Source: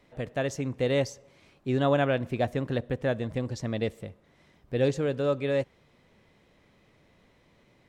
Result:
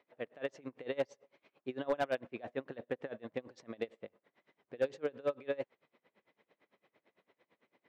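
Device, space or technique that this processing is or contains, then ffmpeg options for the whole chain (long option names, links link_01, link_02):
helicopter radio: -af "highpass=330,lowpass=3000,aeval=exprs='val(0)*pow(10,-26*(0.5-0.5*cos(2*PI*8.9*n/s))/20)':channel_layout=same,asoftclip=type=hard:threshold=-22dB,volume=-2dB"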